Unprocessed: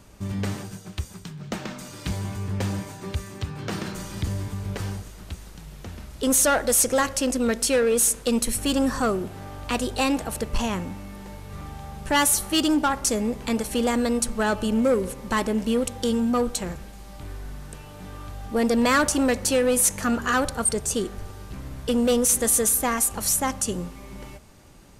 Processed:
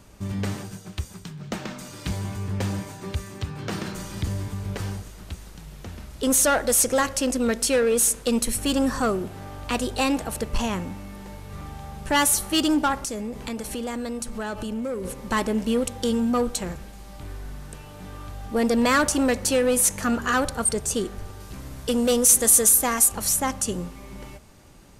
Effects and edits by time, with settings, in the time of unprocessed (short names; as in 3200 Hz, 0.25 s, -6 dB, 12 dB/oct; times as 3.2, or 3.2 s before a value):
12.95–15.05 compressor 4:1, threshold -28 dBFS
21.4–23.12 tone controls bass -2 dB, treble +5 dB